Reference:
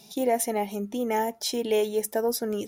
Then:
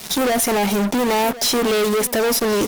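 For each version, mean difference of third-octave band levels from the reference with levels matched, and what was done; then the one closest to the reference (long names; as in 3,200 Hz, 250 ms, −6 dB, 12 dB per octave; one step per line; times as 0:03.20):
9.0 dB: in parallel at +1.5 dB: downward compressor, threshold −35 dBFS, peak gain reduction 15 dB
on the sum: fuzz pedal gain 43 dB, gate −41 dBFS
single-tap delay 1,073 ms −16.5 dB
level −3.5 dB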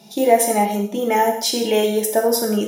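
4.5 dB: high-pass filter 140 Hz 12 dB per octave
reverb whose tail is shaped and stops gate 230 ms falling, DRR 1 dB
one half of a high-frequency compander decoder only
level +7 dB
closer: second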